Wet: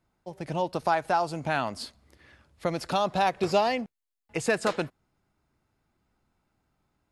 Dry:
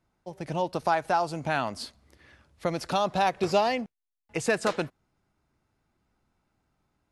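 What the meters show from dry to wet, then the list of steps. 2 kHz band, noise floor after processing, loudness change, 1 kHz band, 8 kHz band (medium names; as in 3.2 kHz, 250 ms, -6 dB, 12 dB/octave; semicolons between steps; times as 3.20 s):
0.0 dB, -84 dBFS, 0.0 dB, 0.0 dB, -1.0 dB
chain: band-stop 5.9 kHz, Q 21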